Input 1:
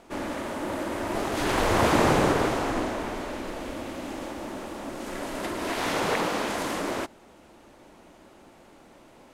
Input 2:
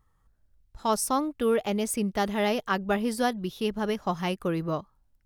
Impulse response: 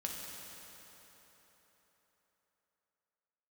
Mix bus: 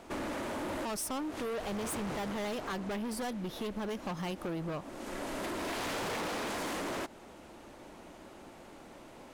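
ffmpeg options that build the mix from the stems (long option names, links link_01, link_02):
-filter_complex "[0:a]volume=1dB[link_01];[1:a]volume=0dB,asplit=2[link_02][link_03];[link_03]apad=whole_len=411795[link_04];[link_01][link_04]sidechaincompress=threshold=-34dB:ratio=16:attack=5.1:release=804[link_05];[link_05][link_02]amix=inputs=2:normalize=0,asoftclip=type=hard:threshold=-29.5dB,acompressor=threshold=-35dB:ratio=6"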